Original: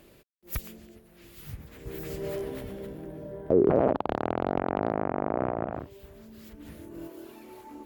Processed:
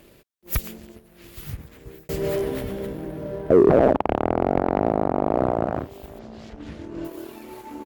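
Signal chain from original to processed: 6.19–7.05 s: low-pass 6.2 kHz 24 dB/octave; waveshaping leveller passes 1; echo from a far wall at 140 m, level -23 dB; 1.40–2.09 s: fade out; trim +5 dB

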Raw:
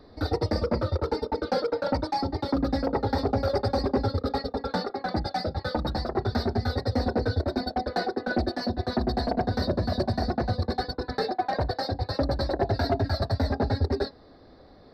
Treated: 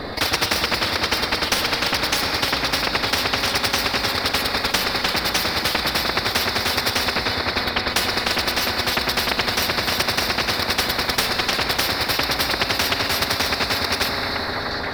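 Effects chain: median filter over 5 samples; peaking EQ 2.3 kHz +10.5 dB 1.7 oct; transient shaper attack +6 dB, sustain +2 dB; 7.16–7.90 s: tone controls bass +10 dB, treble -13 dB; repeats whose band climbs or falls 479 ms, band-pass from 280 Hz, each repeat 1.4 oct, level -10.5 dB; reverberation RT60 3.2 s, pre-delay 32 ms, DRR 9.5 dB; spectrum-flattening compressor 10:1

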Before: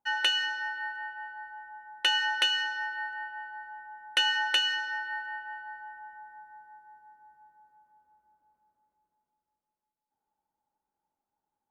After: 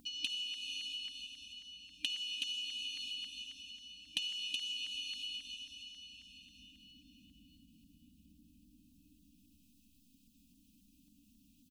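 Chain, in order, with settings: FFT band-reject 310–2400 Hz; gate -53 dBFS, range -9 dB; reverberation RT60 2.9 s, pre-delay 44 ms, DRR 0 dB; LFO notch saw down 3.7 Hz 640–2600 Hz; treble shelf 2.9 kHz -11 dB; compression 5:1, threshold -48 dBFS, peak gain reduction 18.5 dB; treble shelf 8 kHz +3.5 dB; comb 3.9 ms, depth 56%; upward compressor, threshold -58 dBFS; trim +11.5 dB

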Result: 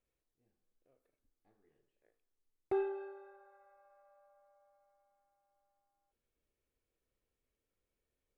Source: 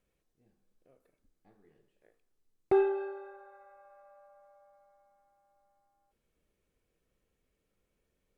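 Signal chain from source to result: peaking EQ 180 Hz -12.5 dB 0.26 oct; trim -8.5 dB

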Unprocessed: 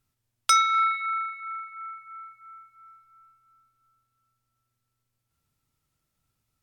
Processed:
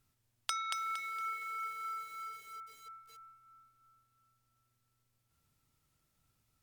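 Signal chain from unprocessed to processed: 1.43–1.85 s: treble shelf 2.4 kHz -6 dB; compression 12:1, threshold -36 dBFS, peak gain reduction 20 dB; bit-crushed delay 231 ms, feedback 35%, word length 9-bit, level -4 dB; trim +1 dB

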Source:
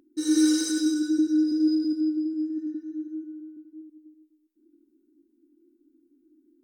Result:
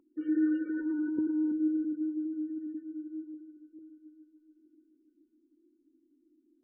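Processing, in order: bass shelf 320 Hz +2.5 dB; 0.69–1.52 s: transient shaper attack -7 dB, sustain +9 dB; 3.34–3.79 s: rippled Chebyshev low-pass 1.7 kHz, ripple 6 dB; multi-head delay 145 ms, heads all three, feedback 70%, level -23 dB; trim -7.5 dB; MP3 8 kbps 22.05 kHz

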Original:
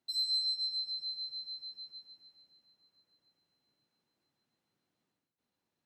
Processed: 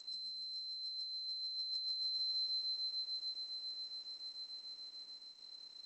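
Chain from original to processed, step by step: spectral levelling over time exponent 0.4; high-pass 350 Hz 12 dB/octave; band-stop 1.6 kHz, Q 12; waveshaping leveller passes 1; on a send: feedback echo behind a high-pass 370 ms, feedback 31%, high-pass 2 kHz, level -19.5 dB; on the sum: compressor with a negative ratio -38 dBFS, ratio -1; trim -3.5 dB; G.722 64 kbps 16 kHz

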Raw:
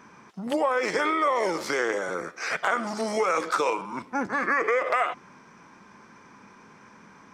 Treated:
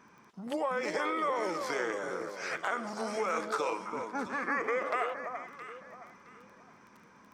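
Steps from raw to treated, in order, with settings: crackle 10 per s -38 dBFS; echo whose repeats swap between lows and highs 334 ms, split 1.2 kHz, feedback 53%, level -5.5 dB; trim -8 dB

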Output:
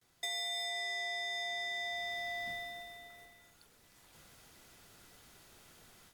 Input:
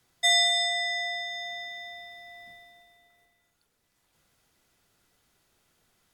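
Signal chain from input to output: level rider gain up to 12 dB; gate with hold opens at -59 dBFS; compression 12:1, threshold -31 dBFS, peak gain reduction 16 dB; saturation -30.5 dBFS, distortion -16 dB; trim -2 dB

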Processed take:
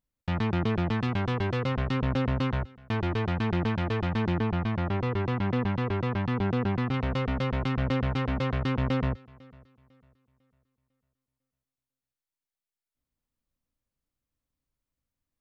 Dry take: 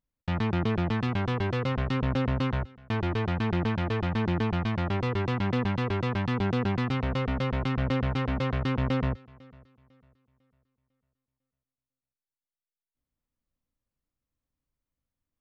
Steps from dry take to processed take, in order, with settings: 4.39–6.94 s: treble shelf 4.3 kHz -11 dB

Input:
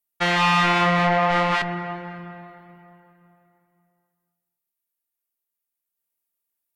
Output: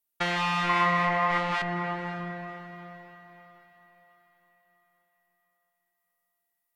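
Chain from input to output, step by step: compression 2.5:1, threshold -29 dBFS, peak gain reduction 9 dB; 0.69–1.38 s: small resonant body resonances 1.1/2 kHz, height 16 dB, ringing for 45 ms; echo that smears into a reverb 543 ms, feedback 44%, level -16 dB

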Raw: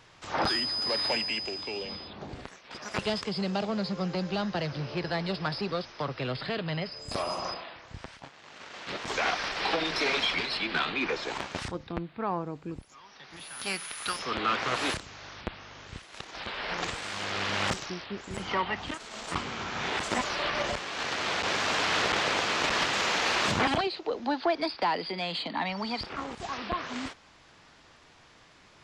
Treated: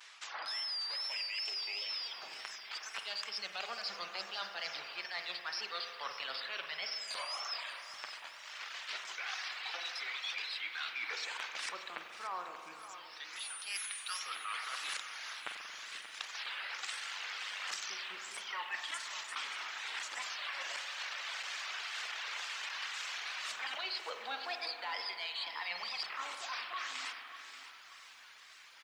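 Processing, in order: wow and flutter 120 cents; high-pass 1.5 kHz 12 dB/octave; reverse; compression 20:1, threshold -41 dBFS, peak gain reduction 17 dB; reverse; frequency-shifting echo 499 ms, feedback 57%, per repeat +120 Hz, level -16 dB; reverb removal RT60 1.2 s; on a send at -4.5 dB: reverberation RT60 2.3 s, pre-delay 45 ms; on the sum: bit-crushed delay 582 ms, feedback 35%, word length 11-bit, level -12 dB; trim +5 dB

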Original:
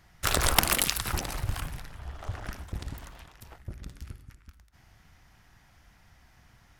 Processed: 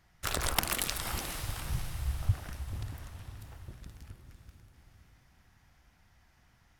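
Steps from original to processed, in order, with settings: 1.69–2.34 s: resonant low shelf 200 Hz +12.5 dB, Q 1.5; on a send: echo that smears into a reverb 528 ms, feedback 47%, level -8.5 dB; on the sum: trim -7 dB

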